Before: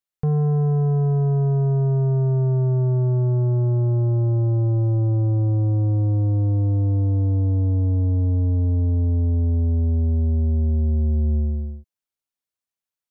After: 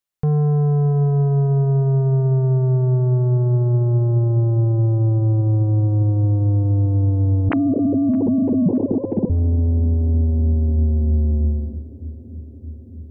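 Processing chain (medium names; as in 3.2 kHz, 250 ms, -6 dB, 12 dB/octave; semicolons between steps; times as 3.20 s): 7.49–9.30 s: formants replaced by sine waves; in parallel at +1 dB: peak limiter -19 dBFS, peak gain reduction 10.5 dB; on the sum: filtered feedback delay 618 ms, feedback 80%, low-pass 870 Hz, level -19 dB; trim -3.5 dB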